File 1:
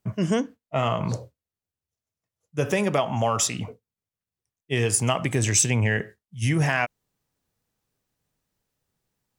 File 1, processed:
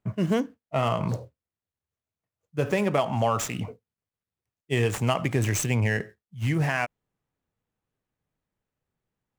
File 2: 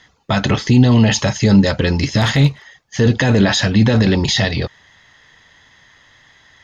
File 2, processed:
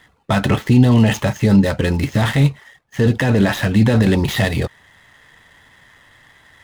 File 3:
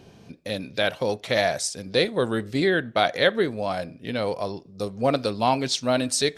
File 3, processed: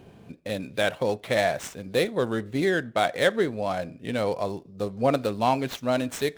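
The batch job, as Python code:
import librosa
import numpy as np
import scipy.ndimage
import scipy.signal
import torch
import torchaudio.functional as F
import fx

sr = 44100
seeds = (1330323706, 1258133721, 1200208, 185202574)

y = scipy.signal.medfilt(x, 9)
y = fx.rider(y, sr, range_db=3, speed_s=2.0)
y = y * librosa.db_to_amplitude(-1.0)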